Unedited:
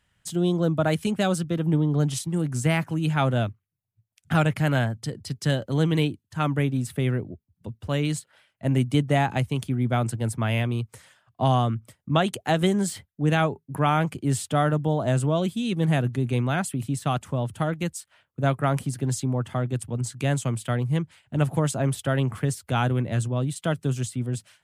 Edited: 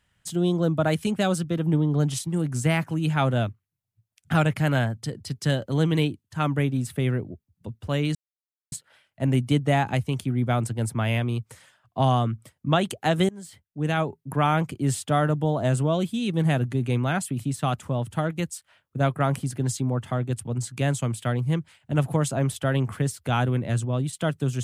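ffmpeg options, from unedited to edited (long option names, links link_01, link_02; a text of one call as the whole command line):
ffmpeg -i in.wav -filter_complex "[0:a]asplit=3[link_01][link_02][link_03];[link_01]atrim=end=8.15,asetpts=PTS-STARTPTS,afade=type=out:start_time=8.146:duration=0.004:curve=hsin,apad=pad_dur=0.57[link_04];[link_02]atrim=start=8.15:end=12.72,asetpts=PTS-STARTPTS,afade=type=in:duration=0.004:curve=hsin,afade=type=out:start_time=4.566:duration=0.004:curve=hsin:silence=0.0630957[link_05];[link_03]atrim=start=12.72,asetpts=PTS-STARTPTS,afade=type=in:duration=0.93:silence=0.0630957[link_06];[link_04][link_05][link_06]concat=n=3:v=0:a=1" out.wav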